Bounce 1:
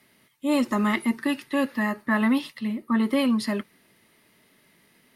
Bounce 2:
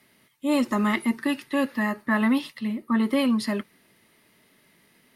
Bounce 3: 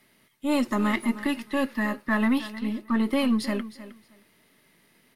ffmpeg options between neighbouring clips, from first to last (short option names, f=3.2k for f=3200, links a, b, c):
-af anull
-af "aeval=exprs='if(lt(val(0),0),0.708*val(0),val(0))':c=same,aecho=1:1:312|624:0.178|0.032"